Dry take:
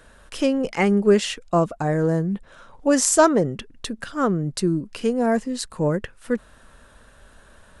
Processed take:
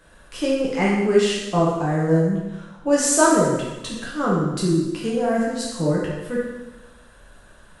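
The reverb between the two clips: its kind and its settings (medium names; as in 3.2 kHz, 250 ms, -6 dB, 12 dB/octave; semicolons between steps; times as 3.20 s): plate-style reverb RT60 1.1 s, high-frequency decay 0.95×, DRR -5.5 dB; trim -5.5 dB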